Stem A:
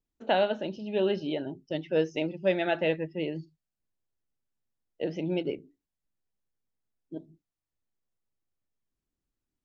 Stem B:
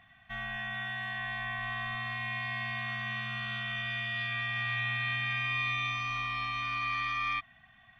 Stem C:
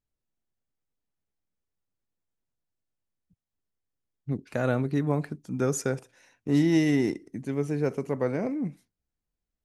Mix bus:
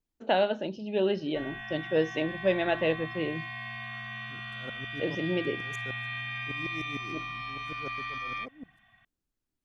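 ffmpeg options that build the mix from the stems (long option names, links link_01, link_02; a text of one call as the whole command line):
ffmpeg -i stem1.wav -i stem2.wav -i stem3.wav -filter_complex "[0:a]volume=0dB[link_01];[1:a]acontrast=64,adelay=1050,volume=-10dB[link_02];[2:a]aeval=exprs='val(0)*pow(10,-30*if(lt(mod(-6.6*n/s,1),2*abs(-6.6)/1000),1-mod(-6.6*n/s,1)/(2*abs(-6.6)/1000),(mod(-6.6*n/s,1)-2*abs(-6.6)/1000)/(1-2*abs(-6.6)/1000))/20)':channel_layout=same,volume=-11dB[link_03];[link_01][link_02][link_03]amix=inputs=3:normalize=0" out.wav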